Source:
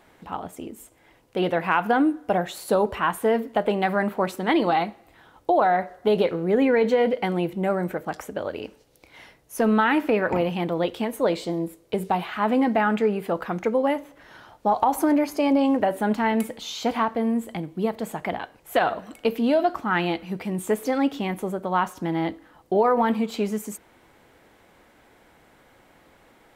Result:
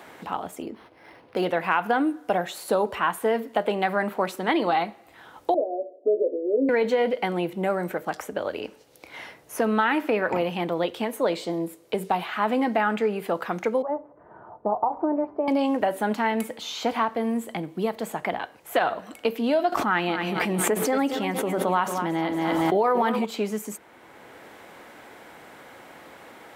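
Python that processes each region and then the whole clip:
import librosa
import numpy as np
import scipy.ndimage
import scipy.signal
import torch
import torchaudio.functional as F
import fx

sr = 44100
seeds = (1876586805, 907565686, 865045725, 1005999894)

y = fx.chain(x, sr, fx.lowpass(hz=6000.0, slope=12),
    fx.resample_linear(factor=6), at=(0.62, 1.45))
y = fx.chain(y, sr, fx.cheby1_bandpass(low_hz=260.0, high_hz=630.0, order=4),
    fx.doubler(ms=14.0, db=-7.5), at=(5.54, 6.69))
y = fx.chain(y, sr, fx.lowpass(hz=1000.0, slope=24),
    fx.notch_comb(f0_hz=270.0), at=(13.82, 15.48))
y = fx.chain(y, sr, fx.echo_feedback(ms=229, feedback_pct=41, wet_db=-12.0),
    fx.pre_swell(db_per_s=20.0), at=(19.72, 23.25))
y = scipy.signal.sosfilt(scipy.signal.butter(2, 71.0, 'highpass', fs=sr, output='sos'), y)
y = fx.low_shelf(y, sr, hz=250.0, db=-8.0)
y = fx.band_squash(y, sr, depth_pct=40)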